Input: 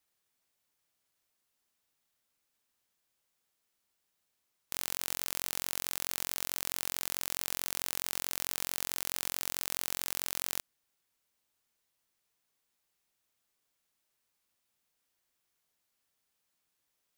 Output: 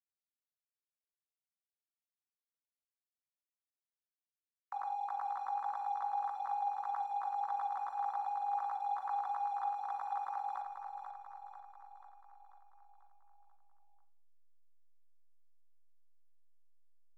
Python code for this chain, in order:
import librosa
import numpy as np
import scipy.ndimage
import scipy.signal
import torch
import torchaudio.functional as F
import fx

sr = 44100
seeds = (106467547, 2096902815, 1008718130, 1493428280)

y = fx.sine_speech(x, sr)
y = scipy.signal.sosfilt(scipy.signal.cheby1(3, 1.0, [350.0, 1200.0], 'bandpass', fs=sr, output='sos'), y)
y = fx.tilt_eq(y, sr, slope=3.0)
y = fx.backlash(y, sr, play_db=-58.0)
y = fx.echo_feedback(y, sr, ms=490, feedback_pct=55, wet_db=-6.5)
y = fx.room_shoebox(y, sr, seeds[0], volume_m3=780.0, walls='furnished', distance_m=1.1)